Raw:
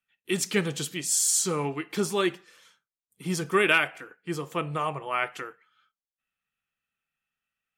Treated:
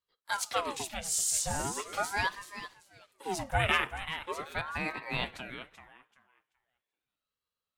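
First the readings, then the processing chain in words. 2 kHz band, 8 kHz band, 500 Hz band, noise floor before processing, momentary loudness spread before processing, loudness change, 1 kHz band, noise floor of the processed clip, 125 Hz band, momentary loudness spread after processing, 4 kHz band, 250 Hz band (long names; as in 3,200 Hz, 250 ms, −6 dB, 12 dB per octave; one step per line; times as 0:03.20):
−4.5 dB, −5.5 dB, −9.5 dB, below −85 dBFS, 14 LU, −6.0 dB, −2.0 dB, below −85 dBFS, −5.5 dB, 16 LU, −3.5 dB, −12.0 dB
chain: feedback echo with a high-pass in the loop 384 ms, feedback 23%, high-pass 380 Hz, level −10 dB
ring modulator whose carrier an LFO sweeps 840 Hz, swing 70%, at 0.4 Hz
level −3 dB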